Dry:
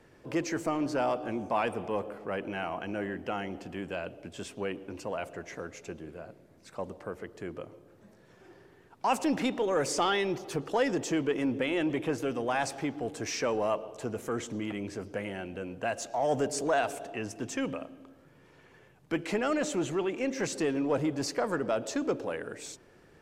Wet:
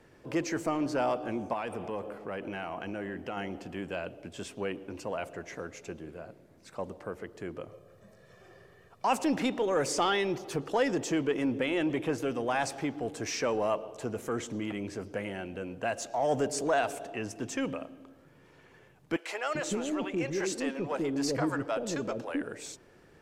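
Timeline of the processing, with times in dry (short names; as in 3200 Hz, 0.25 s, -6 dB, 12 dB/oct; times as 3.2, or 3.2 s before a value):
1.53–3.37 compressor 2.5:1, threshold -33 dBFS
7.68–9.05 comb 1.7 ms
19.16–22.42 bands offset in time highs, lows 0.39 s, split 510 Hz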